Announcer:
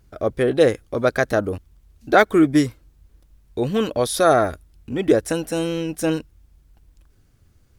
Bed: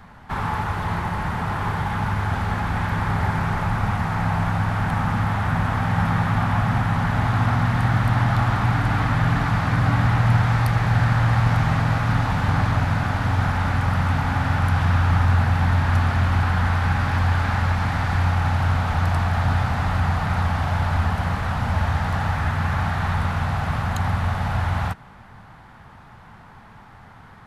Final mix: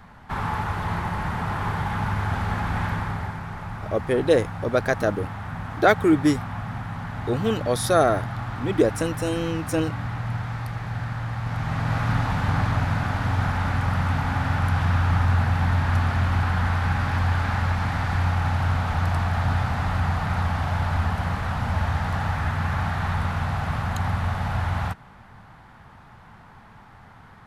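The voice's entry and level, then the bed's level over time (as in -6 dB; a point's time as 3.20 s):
3.70 s, -3.0 dB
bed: 2.87 s -2 dB
3.41 s -11 dB
11.39 s -11 dB
12.00 s -2.5 dB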